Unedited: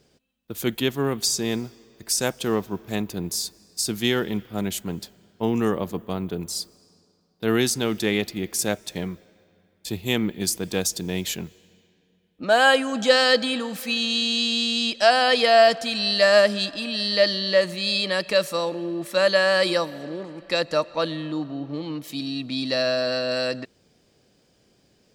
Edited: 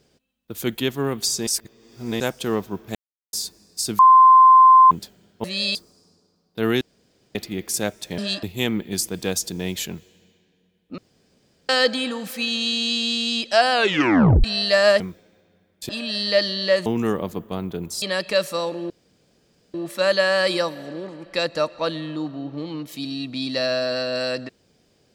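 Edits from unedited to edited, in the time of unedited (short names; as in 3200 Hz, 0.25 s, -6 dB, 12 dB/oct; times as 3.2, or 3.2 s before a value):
1.47–2.2 reverse
2.95–3.33 mute
3.99–4.91 bleep 1040 Hz -7 dBFS
5.44–6.6 swap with 17.71–18.02
7.66–8.2 room tone
9.03–9.92 swap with 16.49–16.74
12.47–13.18 room tone
15.23 tape stop 0.70 s
18.9 insert room tone 0.84 s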